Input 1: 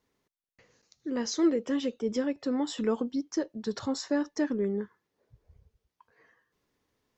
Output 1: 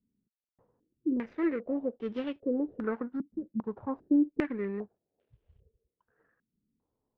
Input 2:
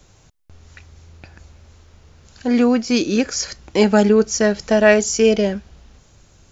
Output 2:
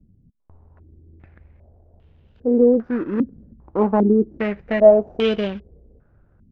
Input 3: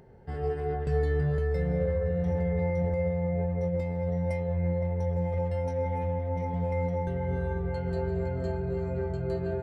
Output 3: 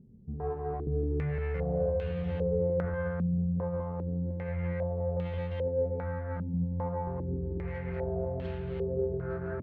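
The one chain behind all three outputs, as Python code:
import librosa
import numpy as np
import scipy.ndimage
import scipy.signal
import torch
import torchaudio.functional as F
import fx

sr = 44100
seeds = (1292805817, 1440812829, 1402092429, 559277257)

y = scipy.signal.medfilt(x, 41)
y = fx.filter_held_lowpass(y, sr, hz=2.5, low_hz=220.0, high_hz=3100.0)
y = y * librosa.db_to_amplitude(-4.5)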